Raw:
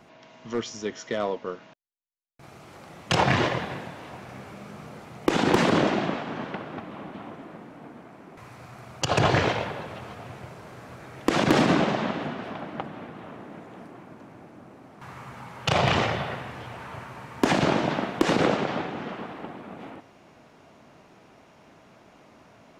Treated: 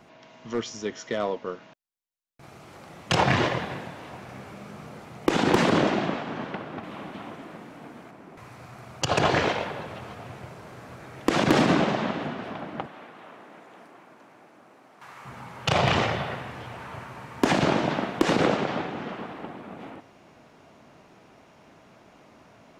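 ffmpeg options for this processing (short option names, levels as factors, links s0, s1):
-filter_complex "[0:a]asettb=1/sr,asplit=3[s0][s1][s2];[s0]atrim=end=6.834[s3];[s1]atrim=start=6.83:end=8.11,asetpts=PTS-STARTPTS,afade=t=in:d=0.004:c=qsin,afade=t=out:st=1.276:d=0.004:c=qsin,highshelf=f=2100:g=7.5[s4];[s2]atrim=start=8.106[s5];[s3][s4]acrossfade=d=0.004:c1=hsin:c2=qsin[s6];[s6][s5]acrossfade=d=0.004:c1=qsin:c2=hsin,asettb=1/sr,asplit=3[s7][s8][s9];[s7]atrim=end=9.164[s10];[s8]atrim=start=9.16:end=9.73,asetpts=PTS-STARTPTS,afade=t=in:d=0.004:c=qsin,afade=t=out:st=0.566:d=0.004:c=qsin,equalizer=f=110:t=o:w=0.77:g=-8.5[s11];[s9]atrim=start=9.726[s12];[s10][s11]acrossfade=d=0.004:c1=hsin:c2=qsin[s13];[s13][s12]acrossfade=d=0.004:c1=qsin:c2=hsin,asettb=1/sr,asplit=3[s14][s15][s16];[s14]atrim=end=12.864[s17];[s15]atrim=start=12.86:end=15.25,asetpts=PTS-STARTPTS,afade=t=in:d=0.004:c=qsin,afade=t=out:st=2.386:d=0.004:c=qsin,highpass=f=750:p=1[s18];[s16]atrim=start=15.246[s19];[s17][s18]acrossfade=d=0.004:c1=hsin:c2=qsin[s20];[s20][s19]acrossfade=d=0.004:c1=qsin:c2=hsin"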